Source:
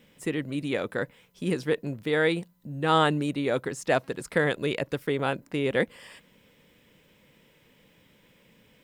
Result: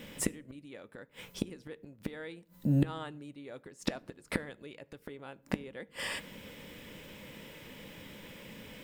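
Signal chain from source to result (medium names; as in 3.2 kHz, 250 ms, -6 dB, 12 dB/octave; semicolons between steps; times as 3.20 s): inverted gate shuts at -27 dBFS, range -31 dB; on a send: reverberation RT60 0.55 s, pre-delay 3 ms, DRR 14 dB; on the sum: trim +11 dB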